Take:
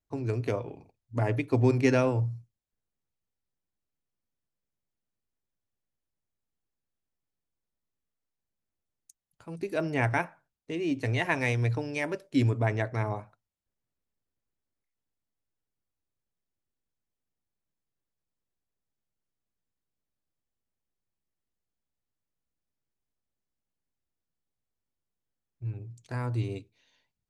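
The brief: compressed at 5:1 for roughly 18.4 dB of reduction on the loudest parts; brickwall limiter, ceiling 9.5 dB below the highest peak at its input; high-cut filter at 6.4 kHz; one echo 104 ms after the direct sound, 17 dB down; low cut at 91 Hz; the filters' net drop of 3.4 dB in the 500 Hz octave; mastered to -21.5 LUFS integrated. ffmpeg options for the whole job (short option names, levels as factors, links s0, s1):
-af "highpass=91,lowpass=6400,equalizer=f=500:t=o:g=-4.5,acompressor=threshold=0.00794:ratio=5,alimiter=level_in=4.47:limit=0.0631:level=0:latency=1,volume=0.224,aecho=1:1:104:0.141,volume=21.1"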